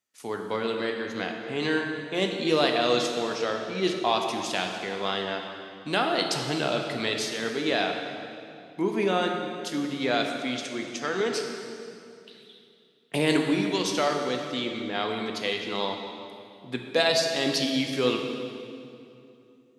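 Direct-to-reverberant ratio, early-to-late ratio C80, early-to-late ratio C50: 2.5 dB, 5.0 dB, 3.5 dB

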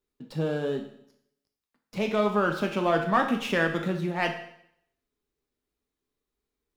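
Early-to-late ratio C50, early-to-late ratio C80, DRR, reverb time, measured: 8.0 dB, 11.0 dB, 3.5 dB, 0.70 s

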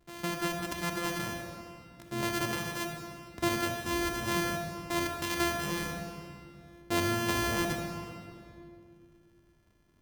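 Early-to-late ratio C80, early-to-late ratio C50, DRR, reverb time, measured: 4.5 dB, 3.5 dB, 2.5 dB, 2.4 s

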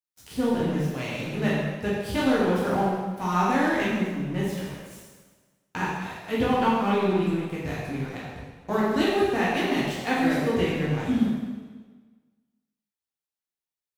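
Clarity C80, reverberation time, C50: 1.5 dB, 1.4 s, −1.5 dB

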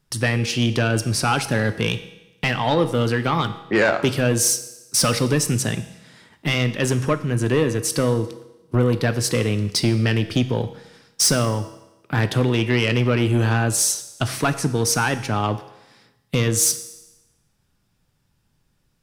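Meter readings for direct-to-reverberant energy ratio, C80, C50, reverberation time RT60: 10.0 dB, 15.0 dB, 13.5 dB, 0.95 s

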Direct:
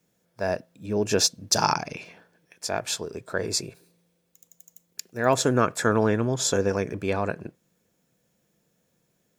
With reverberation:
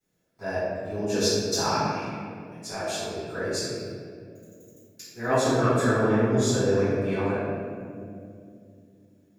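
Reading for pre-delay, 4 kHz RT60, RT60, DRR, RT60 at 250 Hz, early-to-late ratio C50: 3 ms, 1.2 s, 2.5 s, −16.5 dB, 3.9 s, −3.5 dB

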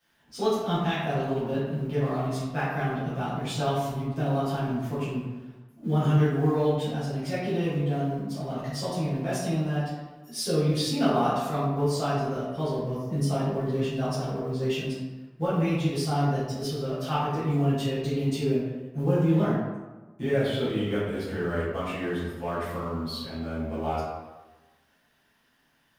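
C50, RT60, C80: −0.5 dB, 1.2 s, 2.5 dB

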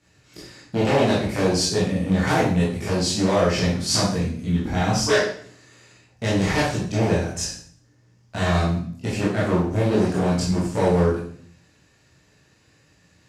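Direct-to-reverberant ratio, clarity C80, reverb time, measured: −8.0 dB, 7.5 dB, 0.55 s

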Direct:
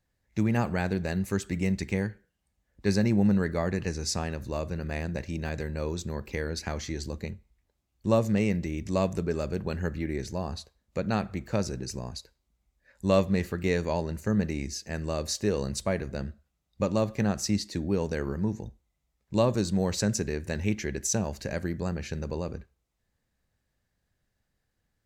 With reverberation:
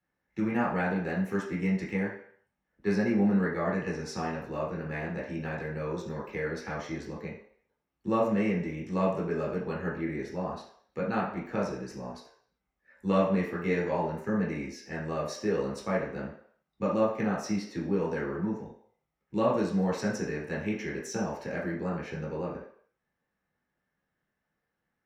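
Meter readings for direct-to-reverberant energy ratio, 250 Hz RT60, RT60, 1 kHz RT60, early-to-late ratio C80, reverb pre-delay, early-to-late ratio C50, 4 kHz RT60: −5.5 dB, 0.45 s, 0.60 s, 0.60 s, 8.5 dB, 9 ms, 4.0 dB, 0.60 s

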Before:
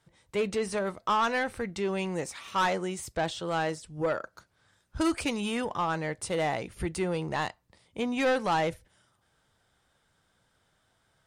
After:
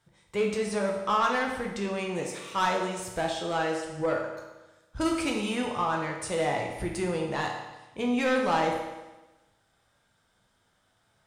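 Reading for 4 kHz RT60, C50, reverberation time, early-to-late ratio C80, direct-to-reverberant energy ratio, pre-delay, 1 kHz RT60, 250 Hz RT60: 1.1 s, 4.0 dB, 1.1 s, 6.5 dB, 0.5 dB, 12 ms, 1.1 s, 1.1 s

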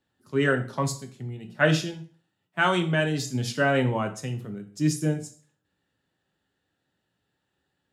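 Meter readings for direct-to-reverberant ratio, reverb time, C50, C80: 5.0 dB, 0.40 s, 13.0 dB, 18.0 dB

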